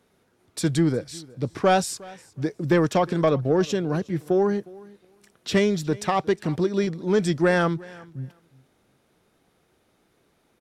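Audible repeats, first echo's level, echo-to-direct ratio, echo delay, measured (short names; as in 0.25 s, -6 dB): 1, -22.5 dB, -22.5 dB, 0.36 s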